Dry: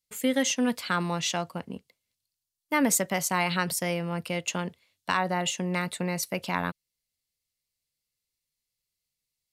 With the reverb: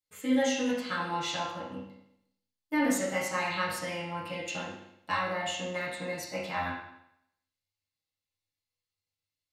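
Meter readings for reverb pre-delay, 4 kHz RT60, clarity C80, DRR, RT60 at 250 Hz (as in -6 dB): 4 ms, 0.75 s, 5.0 dB, -10.0 dB, 0.75 s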